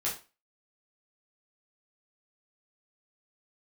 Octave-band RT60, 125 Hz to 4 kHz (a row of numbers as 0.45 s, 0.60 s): 0.25 s, 0.30 s, 0.30 s, 0.30 s, 0.30 s, 0.30 s